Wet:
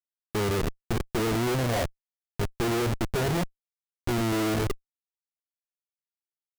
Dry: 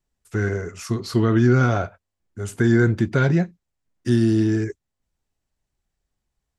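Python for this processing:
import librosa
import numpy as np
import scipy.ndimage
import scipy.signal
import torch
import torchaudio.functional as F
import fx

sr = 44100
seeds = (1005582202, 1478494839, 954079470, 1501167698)

y = fx.spec_quant(x, sr, step_db=15)
y = fx.band_shelf(y, sr, hz=620.0, db=10.0, octaves=1.7)
y = fx.schmitt(y, sr, flips_db=-19.5)
y = F.gain(torch.from_numpy(y), -6.5).numpy()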